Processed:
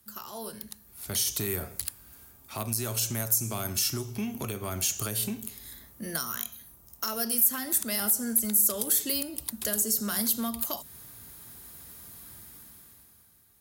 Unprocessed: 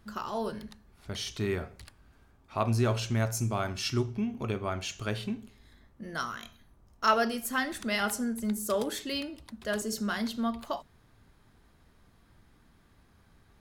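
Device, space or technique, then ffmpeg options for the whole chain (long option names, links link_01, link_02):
FM broadcast chain: -filter_complex "[0:a]highpass=56,dynaudnorm=framelen=120:gausssize=17:maxgain=16.5dB,acrossover=split=170|400|1400|5800[link_01][link_02][link_03][link_04][link_05];[link_01]acompressor=threshold=-24dB:ratio=4[link_06];[link_02]acompressor=threshold=-26dB:ratio=4[link_07];[link_03]acompressor=threshold=-27dB:ratio=4[link_08];[link_04]acompressor=threshold=-34dB:ratio=4[link_09];[link_05]acompressor=threshold=-33dB:ratio=4[link_10];[link_06][link_07][link_08][link_09][link_10]amix=inputs=5:normalize=0,aemphasis=mode=production:type=50fm,alimiter=limit=-14.5dB:level=0:latency=1:release=221,asoftclip=type=hard:threshold=-17dB,lowpass=frequency=15000:width=0.5412,lowpass=frequency=15000:width=1.3066,aemphasis=mode=production:type=50fm,volume=-8.5dB"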